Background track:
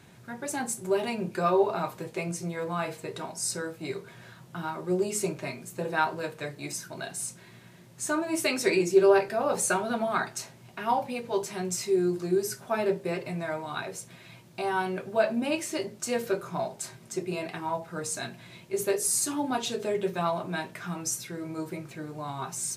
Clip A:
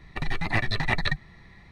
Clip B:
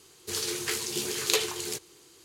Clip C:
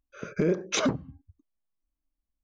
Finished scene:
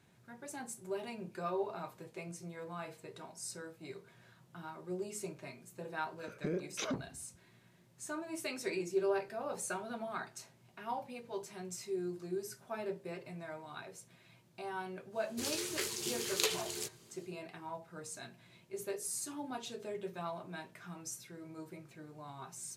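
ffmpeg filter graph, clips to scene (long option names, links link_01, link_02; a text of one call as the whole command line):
ffmpeg -i bed.wav -i cue0.wav -i cue1.wav -i cue2.wav -filter_complex "[0:a]volume=-13dB[link_01];[3:a]atrim=end=2.43,asetpts=PTS-STARTPTS,volume=-12dB,afade=type=in:duration=0.004:curve=hsin,afade=type=out:start_time=2.426:duration=0.004:curve=hsin,adelay=6050[link_02];[2:a]atrim=end=2.24,asetpts=PTS-STARTPTS,volume=-7dB,afade=type=in:duration=0.1,afade=type=out:start_time=2.14:duration=0.1,adelay=15100[link_03];[link_01][link_02][link_03]amix=inputs=3:normalize=0" out.wav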